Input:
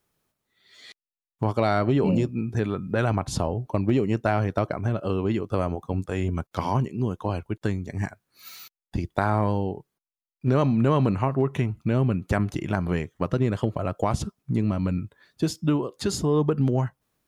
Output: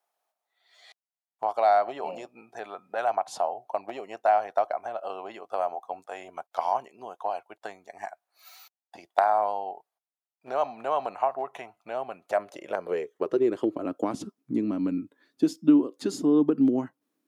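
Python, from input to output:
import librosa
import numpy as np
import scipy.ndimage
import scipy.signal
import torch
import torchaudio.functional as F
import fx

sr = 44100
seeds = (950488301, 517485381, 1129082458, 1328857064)

y = fx.cheby_harmonics(x, sr, harmonics=(3, 5, 6), levels_db=(-14, -31, -45), full_scale_db=-4.0)
y = fx.filter_sweep_highpass(y, sr, from_hz=720.0, to_hz=280.0, start_s=12.12, end_s=13.92, q=5.7)
y = y * 10.0 ** (-2.5 / 20.0)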